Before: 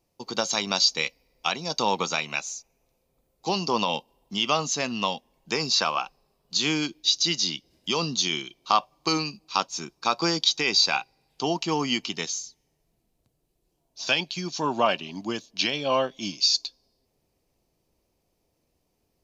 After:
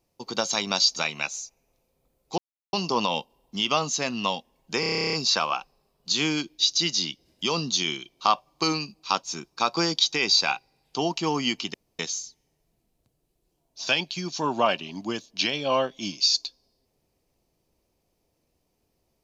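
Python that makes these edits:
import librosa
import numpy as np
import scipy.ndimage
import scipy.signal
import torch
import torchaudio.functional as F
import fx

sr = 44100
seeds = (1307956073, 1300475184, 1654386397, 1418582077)

y = fx.edit(x, sr, fx.cut(start_s=0.96, length_s=1.13),
    fx.insert_silence(at_s=3.51, length_s=0.35),
    fx.stutter(start_s=5.58, slice_s=0.03, count=12),
    fx.insert_room_tone(at_s=12.19, length_s=0.25), tone=tone)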